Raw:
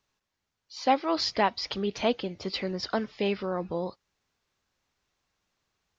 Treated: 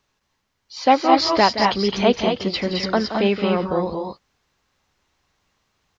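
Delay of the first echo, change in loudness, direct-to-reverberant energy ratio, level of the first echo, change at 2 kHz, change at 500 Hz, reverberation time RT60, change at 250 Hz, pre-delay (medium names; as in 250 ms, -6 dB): 172 ms, +10.0 dB, no reverb, -11.5 dB, +10.0 dB, +9.5 dB, no reverb, +10.5 dB, no reverb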